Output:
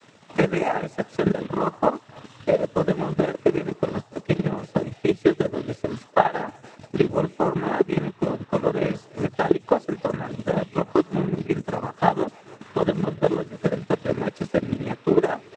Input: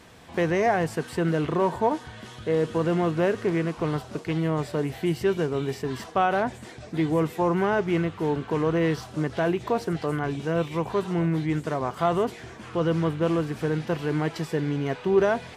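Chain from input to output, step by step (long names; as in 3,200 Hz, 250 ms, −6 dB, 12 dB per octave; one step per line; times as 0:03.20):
cochlear-implant simulation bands 12
far-end echo of a speakerphone 290 ms, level −17 dB
transient designer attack +10 dB, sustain −7 dB
level −2.5 dB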